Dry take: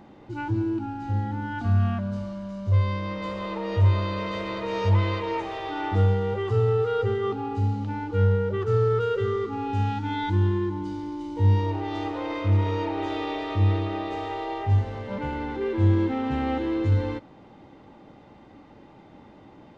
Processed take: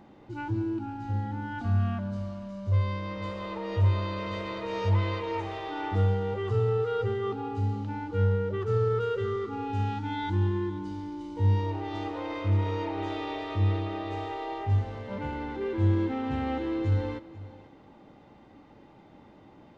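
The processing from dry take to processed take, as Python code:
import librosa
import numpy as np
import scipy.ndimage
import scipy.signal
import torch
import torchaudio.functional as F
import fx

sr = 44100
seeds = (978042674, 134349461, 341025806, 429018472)

y = x + 10.0 ** (-18.0 / 20.0) * np.pad(x, (int(492 * sr / 1000.0), 0))[:len(x)]
y = y * librosa.db_to_amplitude(-4.0)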